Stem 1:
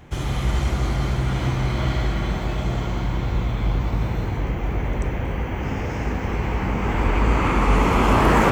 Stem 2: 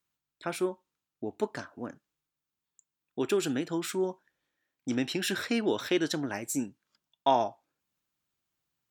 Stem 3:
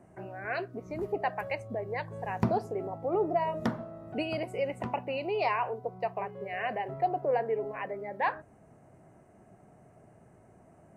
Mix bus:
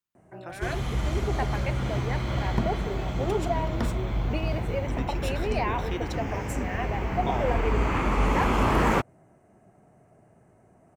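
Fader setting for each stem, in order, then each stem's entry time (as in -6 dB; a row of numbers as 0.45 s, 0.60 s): -6.0 dB, -8.0 dB, -0.5 dB; 0.50 s, 0.00 s, 0.15 s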